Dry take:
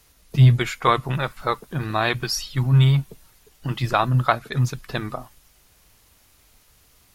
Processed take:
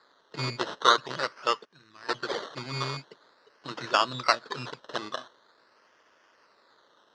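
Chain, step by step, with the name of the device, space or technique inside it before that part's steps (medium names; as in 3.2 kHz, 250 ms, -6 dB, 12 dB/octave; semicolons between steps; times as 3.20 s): 1.65–2.09 s: amplifier tone stack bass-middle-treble 6-0-2; circuit-bent sampling toy (decimation with a swept rate 15×, swing 60% 0.45 Hz; cabinet simulation 490–5200 Hz, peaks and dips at 760 Hz -9 dB, 2.3 kHz -10 dB, 4.1 kHz +4 dB)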